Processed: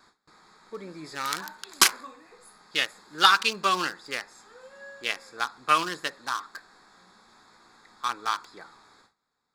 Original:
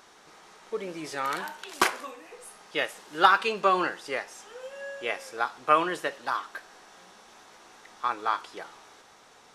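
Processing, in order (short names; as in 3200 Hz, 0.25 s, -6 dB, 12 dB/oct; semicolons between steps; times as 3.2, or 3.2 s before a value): Wiener smoothing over 15 samples; gate with hold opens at -47 dBFS; EQ curve 240 Hz 0 dB, 400 Hz -6 dB, 650 Hz -9 dB, 1100 Hz 0 dB, 2100 Hz +3 dB, 3100 Hz +9 dB, 4600 Hz +14 dB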